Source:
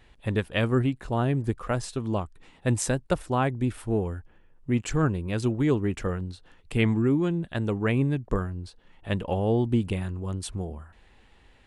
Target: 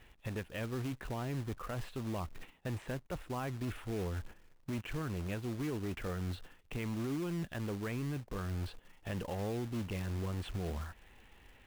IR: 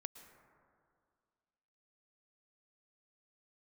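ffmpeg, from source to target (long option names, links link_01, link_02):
-filter_complex "[0:a]agate=range=-12dB:threshold=-48dB:ratio=16:detection=peak,acrossover=split=3100[link_01][link_02];[link_02]acompressor=threshold=-46dB:ratio=4:attack=1:release=60[link_03];[link_01][link_03]amix=inputs=2:normalize=0,highshelf=frequency=4100:width_type=q:width=1.5:gain=-11,areverse,acompressor=threshold=-34dB:ratio=12,areverse,alimiter=level_in=13dB:limit=-24dB:level=0:latency=1:release=278,volume=-13dB,asoftclip=type=tanh:threshold=-40dB,acrusher=bits=3:mode=log:mix=0:aa=0.000001,volume=9dB"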